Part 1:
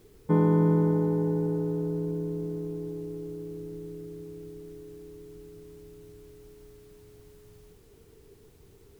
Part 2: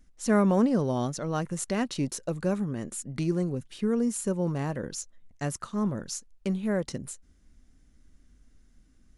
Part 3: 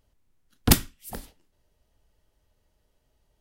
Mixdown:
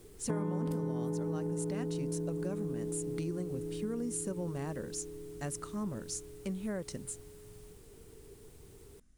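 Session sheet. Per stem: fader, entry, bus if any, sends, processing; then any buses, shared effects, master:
+0.5 dB, 0.00 s, no send, none
-7.0 dB, 0.00 s, no send, none
-5.0 dB, 0.00 s, no send, compression, threshold -24 dBFS, peak gain reduction 12.5 dB; auto duck -18 dB, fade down 1.35 s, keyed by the second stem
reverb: none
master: peaking EQ 8.9 kHz +8 dB 0.57 oct; compression 6:1, threshold -32 dBFS, peak gain reduction 14.5 dB

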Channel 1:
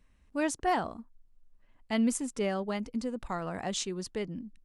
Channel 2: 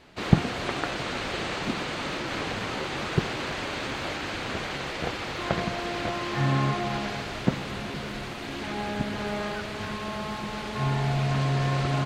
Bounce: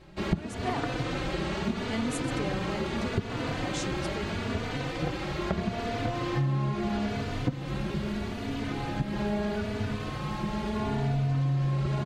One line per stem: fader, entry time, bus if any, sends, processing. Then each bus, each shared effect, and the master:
-3.5 dB, 0.00 s, no send, none
-1.5 dB, 0.00 s, no send, bass shelf 440 Hz +11.5 dB; endless flanger 3.3 ms +0.77 Hz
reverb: none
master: compression 6:1, threshold -25 dBFS, peak gain reduction 18 dB

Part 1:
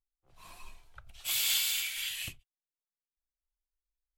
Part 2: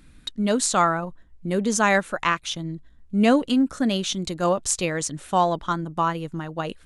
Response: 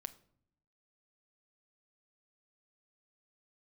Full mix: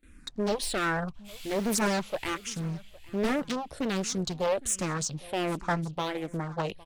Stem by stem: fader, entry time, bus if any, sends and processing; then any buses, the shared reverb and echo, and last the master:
-4.0 dB, 0.00 s, no send, echo send -15 dB, tilt EQ -2.5 dB/octave; auto duck -9 dB, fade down 1.80 s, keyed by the second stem
0.0 dB, 0.00 s, no send, echo send -22 dB, gate with hold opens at -44 dBFS; hard clipper -21.5 dBFS, distortion -7 dB; barber-pole phaser -1.3 Hz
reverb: none
echo: feedback delay 810 ms, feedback 32%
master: loudspeaker Doppler distortion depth 0.99 ms

